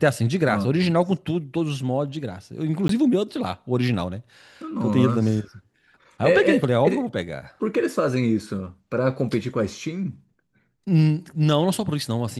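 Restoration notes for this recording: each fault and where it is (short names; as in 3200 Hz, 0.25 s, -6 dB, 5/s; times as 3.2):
2.88–2.89 gap 13 ms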